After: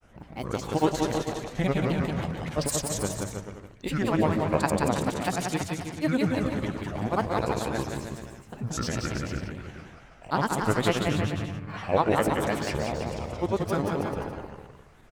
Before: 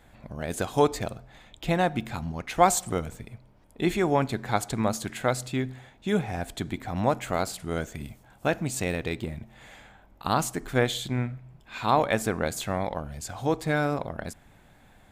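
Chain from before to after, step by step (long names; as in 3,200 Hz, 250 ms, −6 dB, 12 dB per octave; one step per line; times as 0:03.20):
far-end echo of a speakerphone 260 ms, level −17 dB
granular cloud, pitch spread up and down by 7 semitones
on a send: bouncing-ball delay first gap 180 ms, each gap 0.8×, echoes 5
on the sum: formants moved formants −3 semitones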